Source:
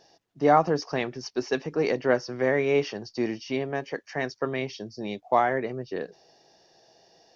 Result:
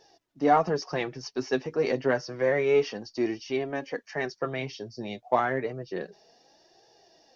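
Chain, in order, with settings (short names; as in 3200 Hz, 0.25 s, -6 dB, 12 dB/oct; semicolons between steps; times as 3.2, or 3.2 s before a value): flange 0.29 Hz, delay 2.2 ms, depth 6.3 ms, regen +32%; in parallel at -9 dB: soft clip -21 dBFS, distortion -13 dB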